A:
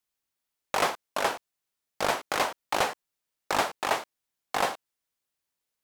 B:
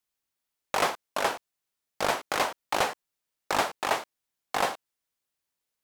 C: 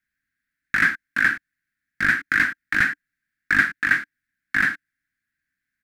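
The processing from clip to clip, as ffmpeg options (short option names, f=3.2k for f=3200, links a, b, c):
-af anull
-af "firequalizer=gain_entry='entry(290,0);entry(440,-29);entry(940,-28);entry(1600,12);entry(2900,-13);entry(4100,-12);entry(6300,-15)':delay=0.05:min_phase=1,volume=8.5dB"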